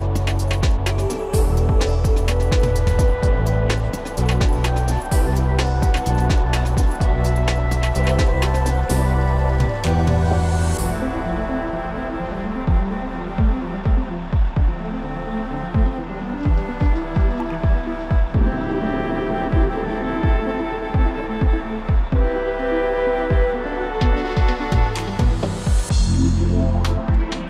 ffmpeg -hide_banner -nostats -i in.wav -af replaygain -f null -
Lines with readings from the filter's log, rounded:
track_gain = +4.8 dB
track_peak = 0.305